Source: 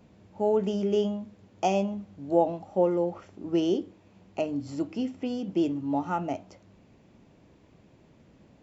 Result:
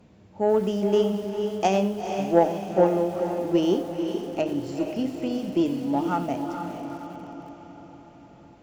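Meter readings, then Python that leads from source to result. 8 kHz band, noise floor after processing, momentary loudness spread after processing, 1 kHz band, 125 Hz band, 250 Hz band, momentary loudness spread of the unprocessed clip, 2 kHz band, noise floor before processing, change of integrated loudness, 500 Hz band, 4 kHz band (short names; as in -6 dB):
n/a, -52 dBFS, 15 LU, +4.5 dB, +4.0 dB, +4.0 dB, 12 LU, +6.0 dB, -59 dBFS, +3.5 dB, +4.5 dB, +5.0 dB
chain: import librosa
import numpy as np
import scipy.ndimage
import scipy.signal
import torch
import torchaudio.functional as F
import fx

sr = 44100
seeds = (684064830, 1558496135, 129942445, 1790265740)

y = fx.cheby_harmonics(x, sr, harmonics=(3, 7, 8), levels_db=(-21, -42, -43), full_scale_db=-9.5)
y = fx.echo_diffused(y, sr, ms=458, feedback_pct=54, wet_db=-6.5)
y = fx.echo_crushed(y, sr, ms=90, feedback_pct=35, bits=7, wet_db=-15)
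y = y * librosa.db_to_amplitude(5.5)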